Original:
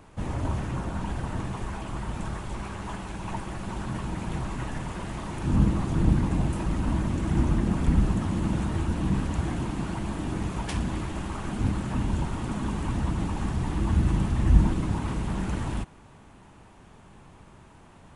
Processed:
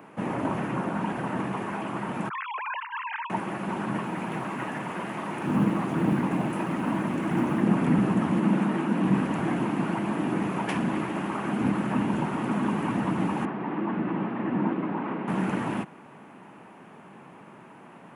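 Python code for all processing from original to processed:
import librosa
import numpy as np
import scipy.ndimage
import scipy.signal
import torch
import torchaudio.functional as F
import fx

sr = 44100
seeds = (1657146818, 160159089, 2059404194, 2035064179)

y = fx.chain(x, sr, fx.sine_speech(),
    fx.highpass(hz=1200.0, slope=12),
    fx.over_compress(threshold_db=-38.0, ratio=-0.5), at=(2.29, 3.3))
y = fx.chain(y, sr, fx.low_shelf(hz=440.0, db=-4.0),
    fx.quant_float(bits=6), at=(4.03, 7.62))
y = fx.chain(y, sr, fx.cheby1_highpass(hz=180.0, order=3),
    fx.bass_treble(bass_db=3, treble_db=-2), at=(8.4, 9.04))
y = fx.chain(y, sr, fx.highpass(hz=240.0, slope=12),
    fx.air_absorb(metres=420.0), at=(13.45, 15.28))
y = scipy.signal.sosfilt(scipy.signal.butter(4, 170.0, 'highpass', fs=sr, output='sos'), y)
y = fx.band_shelf(y, sr, hz=5700.0, db=-12.5, octaves=1.7)
y = y * 10.0 ** (6.0 / 20.0)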